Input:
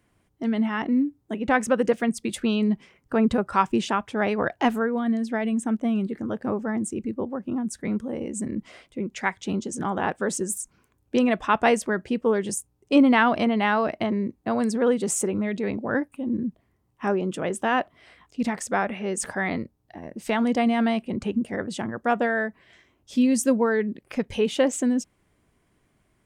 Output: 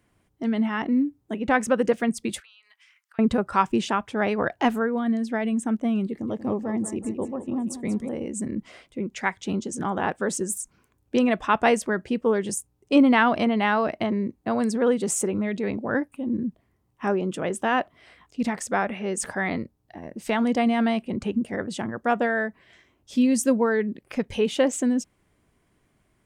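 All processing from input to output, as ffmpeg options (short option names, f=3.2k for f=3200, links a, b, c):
-filter_complex "[0:a]asettb=1/sr,asplit=3[a][b][c];[a]atrim=end=2.404[d];[b]atrim=start=2.4:end=3.19,asetpts=PTS-STARTPTS,afade=t=in:d=0.004:c=qsin,afade=t=out:st=0.786:d=0.004:c=qsin,highpass=f=1.4k:w=0.5412,highpass=f=1.4k:w=1.3066,acompressor=threshold=-52dB:ratio=6:attack=3.2:release=140:knee=1:detection=peak[e];[c]atrim=start=3.186[f];[d][e]acrossfade=d=0.004:c1=hsin:c2=qsin[g];[g][f]acrossfade=d=0.004:c1=qsin:c2=hsin,asettb=1/sr,asplit=3[h][i][j];[h]atrim=end=6.094[k];[i]atrim=start=6.09:end=8.09,asetpts=PTS-STARTPTS,afade=t=in:d=0.004:c=qsin,afade=t=out:st=1.996:d=0.004:c=qsin,equalizer=f=1.5k:w=3.8:g=-14.5,aecho=1:1:186|372|558|744|930:0.282|0.13|0.0596|0.0274|0.0126,atrim=end_sample=88200[l];[j]atrim=start=8.086[m];[k][l]acrossfade=d=0.004:c1=hsin:c2=qsin[n];[n][m]acrossfade=d=0.004:c1=qsin:c2=hsin"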